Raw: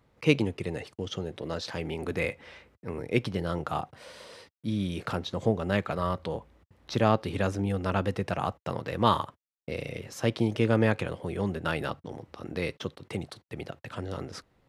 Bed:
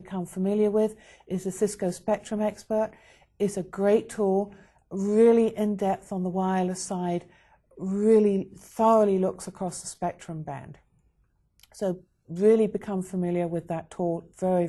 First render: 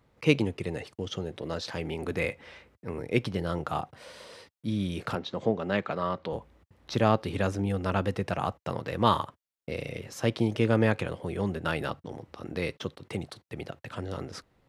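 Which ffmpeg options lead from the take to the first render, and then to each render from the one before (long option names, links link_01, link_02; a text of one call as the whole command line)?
ffmpeg -i in.wav -filter_complex "[0:a]asettb=1/sr,asplit=3[link_01][link_02][link_03];[link_01]atrim=end=5.154[link_04];[link_02]atrim=start=5.15:end=6.33,asetpts=PTS-STARTPTS,afade=type=in:duration=0.004:curve=qsin,afade=type=out:start_time=1.176:duration=0.004:curve=qsin,highpass=160,lowpass=4800[link_05];[link_03]atrim=start=6.326[link_06];[link_04][link_05]acrossfade=duration=0.004:curve1=hsin:curve2=qsin[link_07];[link_07][link_06]acrossfade=duration=0.004:curve1=qsin:curve2=hsin" out.wav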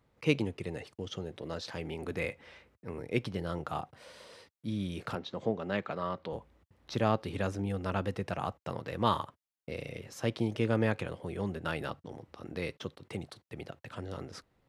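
ffmpeg -i in.wav -af "volume=-5dB" out.wav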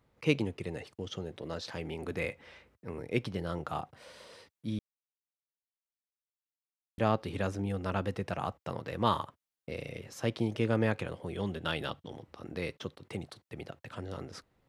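ffmpeg -i in.wav -filter_complex "[0:a]asettb=1/sr,asplit=3[link_01][link_02][link_03];[link_01]atrim=end=11.344[link_04];[link_02]atrim=start=11.34:end=12.23,asetpts=PTS-STARTPTS,afade=type=in:duration=0.004:curve=qsin,afade=type=out:start_time=0.886:duration=0.004:curve=qsin,equalizer=frequency=3300:width=3.5:gain=11.5[link_05];[link_03]atrim=start=12.226[link_06];[link_04][link_05]acrossfade=duration=0.004:curve1=hsin:curve2=qsin[link_07];[link_07][link_06]acrossfade=duration=0.004:curve1=qsin:curve2=hsin,asplit=3[link_08][link_09][link_10];[link_08]atrim=end=4.79,asetpts=PTS-STARTPTS,afade=type=out:start_time=4.786:duration=0.004:curve=hsin[link_11];[link_09]atrim=start=4.79:end=6.98,asetpts=PTS-STARTPTS,volume=0[link_12];[link_10]atrim=start=6.98,asetpts=PTS-STARTPTS,afade=type=in:duration=0.004:curve=hsin[link_13];[link_11][link_12][link_13]concat=n=3:v=0:a=1" out.wav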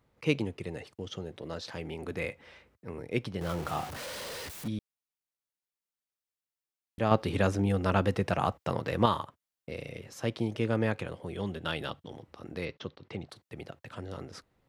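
ffmpeg -i in.wav -filter_complex "[0:a]asettb=1/sr,asplit=3[link_01][link_02][link_03];[link_01]atrim=end=3.414[link_04];[link_02]atrim=start=3.41:end=4.68,asetpts=PTS-STARTPTS,afade=type=in:duration=0.004:curve=qsin,afade=type=out:start_time=1.266:duration=0.004:curve=qsin,aeval=exprs='val(0)+0.5*0.0168*sgn(val(0))':channel_layout=same[link_05];[link_03]atrim=start=4.676[link_06];[link_04][link_05]acrossfade=duration=0.004:curve1=hsin:curve2=qsin[link_07];[link_07][link_06]acrossfade=duration=0.004:curve1=qsin:curve2=hsin,asettb=1/sr,asplit=3[link_08][link_09][link_10];[link_08]atrim=end=7.114[link_11];[link_09]atrim=start=7.11:end=9.06,asetpts=PTS-STARTPTS,afade=type=in:duration=0.004:curve=qsin,afade=type=out:start_time=1.946:duration=0.004:curve=qsin,acontrast=63[link_12];[link_10]atrim=start=9.056[link_13];[link_11][link_12]acrossfade=duration=0.004:curve1=hsin:curve2=qsin[link_14];[link_14][link_13]acrossfade=duration=0.004:curve1=qsin:curve2=hsin,asettb=1/sr,asplit=3[link_15][link_16][link_17];[link_15]atrim=end=12.654[link_18];[link_16]atrim=start=12.65:end=13.29,asetpts=PTS-STARTPTS,afade=type=in:duration=0.004:curve=qsin,afade=type=out:start_time=0.636:duration=0.004:curve=qsin,lowpass=frequency=5500:width=0.5412,lowpass=frequency=5500:width=1.3066[link_19];[link_17]atrim=start=13.286[link_20];[link_18][link_19]acrossfade=duration=0.004:curve1=hsin:curve2=qsin[link_21];[link_21][link_20]acrossfade=duration=0.004:curve1=qsin:curve2=hsin" out.wav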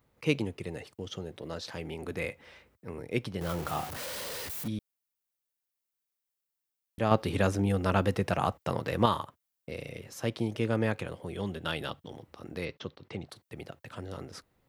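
ffmpeg -i in.wav -af "highshelf=frequency=11000:gain=10.5" out.wav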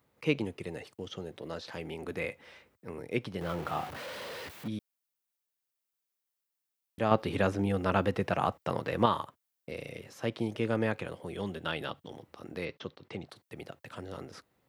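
ffmpeg -i in.wav -filter_complex "[0:a]highpass=frequency=140:poles=1,acrossover=split=3900[link_01][link_02];[link_02]acompressor=threshold=-53dB:ratio=4:attack=1:release=60[link_03];[link_01][link_03]amix=inputs=2:normalize=0" out.wav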